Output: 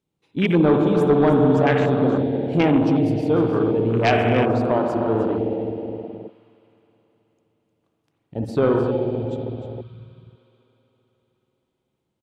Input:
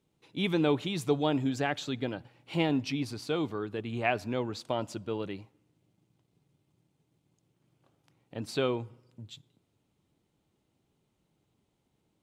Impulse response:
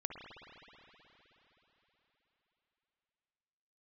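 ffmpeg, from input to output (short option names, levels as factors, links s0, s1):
-filter_complex "[0:a]aecho=1:1:306:0.299[s0];[1:a]atrim=start_sample=2205[s1];[s0][s1]afir=irnorm=-1:irlink=0,afwtdn=0.0158,aeval=exprs='0.224*sin(PI/2*2*val(0)/0.224)':c=same,volume=1.58"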